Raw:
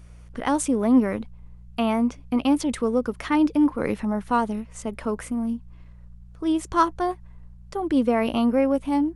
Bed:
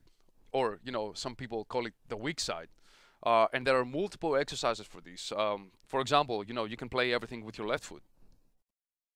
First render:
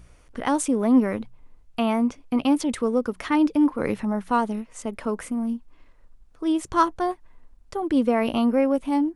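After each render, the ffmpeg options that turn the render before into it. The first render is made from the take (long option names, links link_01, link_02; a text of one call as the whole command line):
ffmpeg -i in.wav -af "bandreject=frequency=60:width_type=h:width=4,bandreject=frequency=120:width_type=h:width=4,bandreject=frequency=180:width_type=h:width=4" out.wav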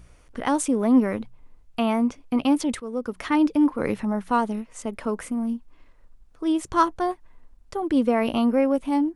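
ffmpeg -i in.wav -filter_complex "[0:a]asplit=2[link_01][link_02];[link_01]atrim=end=2.8,asetpts=PTS-STARTPTS,afade=type=out:start_time=2.796:duration=0.004:curve=hsin:silence=0.177828[link_03];[link_02]atrim=start=2.8,asetpts=PTS-STARTPTS,afade=type=in:duration=0.43:silence=0.177828[link_04];[link_03][link_04]concat=n=2:v=0:a=1" out.wav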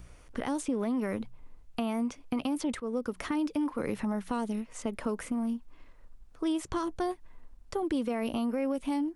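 ffmpeg -i in.wav -filter_complex "[0:a]alimiter=limit=-15.5dB:level=0:latency=1:release=52,acrossover=split=580|1900|5700[link_01][link_02][link_03][link_04];[link_01]acompressor=threshold=-30dB:ratio=4[link_05];[link_02]acompressor=threshold=-41dB:ratio=4[link_06];[link_03]acompressor=threshold=-46dB:ratio=4[link_07];[link_04]acompressor=threshold=-47dB:ratio=4[link_08];[link_05][link_06][link_07][link_08]amix=inputs=4:normalize=0" out.wav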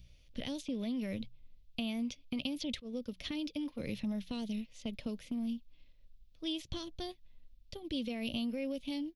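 ffmpeg -i in.wav -af "firequalizer=gain_entry='entry(130,0);entry(400,-13);entry(570,-6);entry(810,-18);entry(1300,-20);entry(2400,0);entry(3500,8);entry(6000,-1);entry(8500,-16);entry(13000,4)':delay=0.05:min_phase=1,agate=range=-7dB:threshold=-41dB:ratio=16:detection=peak" out.wav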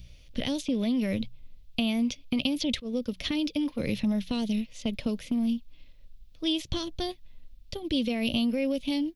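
ffmpeg -i in.wav -af "volume=9.5dB" out.wav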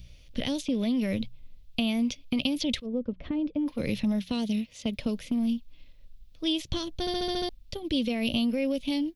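ffmpeg -i in.wav -filter_complex "[0:a]asplit=3[link_01][link_02][link_03];[link_01]afade=type=out:start_time=2.85:duration=0.02[link_04];[link_02]lowpass=1100,afade=type=in:start_time=2.85:duration=0.02,afade=type=out:start_time=3.66:duration=0.02[link_05];[link_03]afade=type=in:start_time=3.66:duration=0.02[link_06];[link_04][link_05][link_06]amix=inputs=3:normalize=0,asettb=1/sr,asplit=3[link_07][link_08][link_09];[link_07]atrim=end=4.194[link_10];[link_08]atrim=start=4.19:end=4.99,asetpts=PTS-STARTPTS,afade=type=in:duration=0.004:curve=qsin,afade=type=out:start_time=0.796:duration=0.004:curve=qsin,highpass=42[link_11];[link_09]atrim=start=4.986[link_12];[link_10][link_11]acrossfade=duration=0.004:curve1=hsin:curve2=qsin[link_13];[link_13][link_12]acrossfade=duration=0.004:curve1=qsin:curve2=hsin,asplit=8[link_14][link_15][link_16][link_17][link_18][link_19][link_20][link_21];[link_14]atrim=end=7.072[link_22];[link_15]atrim=start=6.998:end=7.072[link_23];[link_16]atrim=start=6.998:end=7.072[link_24];[link_17]atrim=start=6.998:end=7.072[link_25];[link_18]atrim=start=6.998:end=7.072[link_26];[link_19]atrim=start=6.998:end=7.072[link_27];[link_20]atrim=start=6.998:end=7.072[link_28];[link_21]atrim=start=7.488[link_29];[link_22][link_23]acrossfade=duration=0.004:curve1=hsin:curve2=hsin[link_30];[link_30][link_24]acrossfade=duration=0.004:curve1=hsin:curve2=hsin[link_31];[link_31][link_25]acrossfade=duration=0.004:curve1=hsin:curve2=hsin[link_32];[link_32][link_26]acrossfade=duration=0.004:curve1=hsin:curve2=hsin[link_33];[link_33][link_27]acrossfade=duration=0.004:curve1=hsin:curve2=hsin[link_34];[link_34][link_28]acrossfade=duration=0.004:curve1=hsin:curve2=hsin[link_35];[link_35][link_29]acrossfade=duration=0.004:curve1=hsin:curve2=hsin" out.wav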